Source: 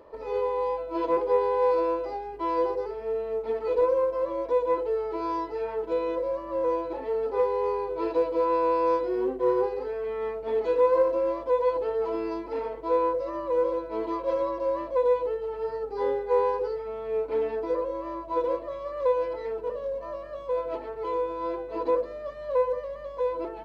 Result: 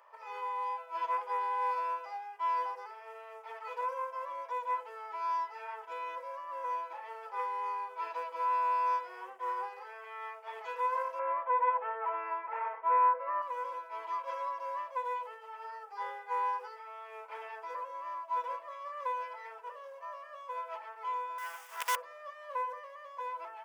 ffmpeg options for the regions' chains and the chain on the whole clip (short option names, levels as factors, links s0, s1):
-filter_complex "[0:a]asettb=1/sr,asplit=3[s0][s1][s2];[s0]atrim=end=11.194[s3];[s1]atrim=start=11.19:end=13.42,asetpts=PTS-STARTPTS,afade=t=in:d=0.004:c=qsin,afade=t=out:st=2.226:d=0.004:c=qsin,lowpass=f=2200:w=0.5412,lowpass=f=2200:w=1.3066,acontrast=51[s4];[s2]atrim=start=13.416[s5];[s3][s4]acrossfade=d=0.004:c1=hsin:c2=qsin[s6];[s6][s5]acrossfade=d=0.004:c1=qsin:c2=hsin,asettb=1/sr,asplit=3[s7][s8][s9];[s7]atrim=end=21.384[s10];[s8]atrim=start=21.38:end=21.96,asetpts=PTS-STARTPTS,afade=t=in:d=0.004:c=qsin,afade=t=out:st=0.576:d=0.004:c=qsin,aemphasis=mode=production:type=riaa,acrusher=bits=5:dc=4:mix=0:aa=0.000001[s11];[s9]atrim=start=21.956[s12];[s10][s11]acrossfade=d=0.004:c1=hsin:c2=qsin[s13];[s13][s12]acrossfade=d=0.004:c1=qsin:c2=hsin,highpass=f=910:w=0.5412,highpass=f=910:w=1.3066,equalizer=f=4100:t=o:w=0.28:g=-15"